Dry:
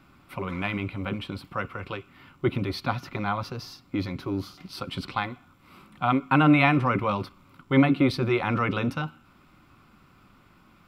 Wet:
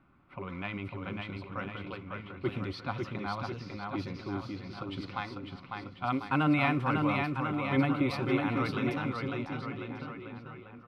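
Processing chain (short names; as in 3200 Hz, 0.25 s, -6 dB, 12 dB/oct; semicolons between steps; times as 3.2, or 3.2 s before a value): bouncing-ball echo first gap 0.55 s, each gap 0.9×, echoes 5; low-pass opened by the level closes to 1900 Hz, open at -19 dBFS; gain -8 dB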